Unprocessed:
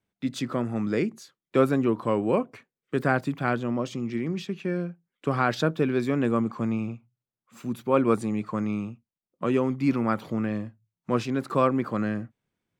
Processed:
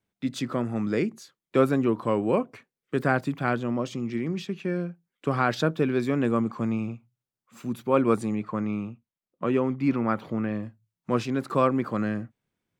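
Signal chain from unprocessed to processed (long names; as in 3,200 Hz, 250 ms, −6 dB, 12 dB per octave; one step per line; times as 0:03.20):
0:08.35–0:10.63: bass and treble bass −1 dB, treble −9 dB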